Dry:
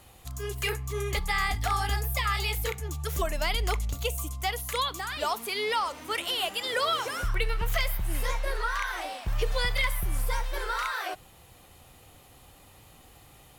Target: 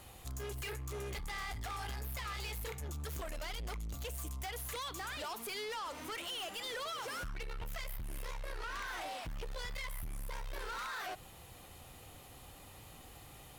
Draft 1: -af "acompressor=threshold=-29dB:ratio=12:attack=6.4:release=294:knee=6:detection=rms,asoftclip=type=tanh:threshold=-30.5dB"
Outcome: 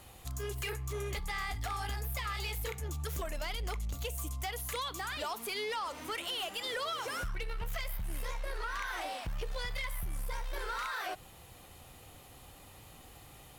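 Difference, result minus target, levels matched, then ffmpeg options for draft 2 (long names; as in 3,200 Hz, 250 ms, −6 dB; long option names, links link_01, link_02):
soft clipping: distortion −8 dB
-af "acompressor=threshold=-29dB:ratio=12:attack=6.4:release=294:knee=6:detection=rms,asoftclip=type=tanh:threshold=-38.5dB"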